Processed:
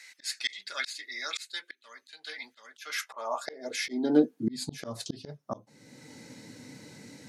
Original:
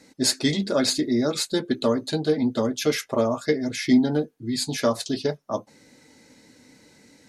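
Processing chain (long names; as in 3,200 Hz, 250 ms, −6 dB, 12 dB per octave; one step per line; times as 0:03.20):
high-pass filter sweep 2,000 Hz → 120 Hz, 0:02.61–0:04.88
volume swells 605 ms
level +3.5 dB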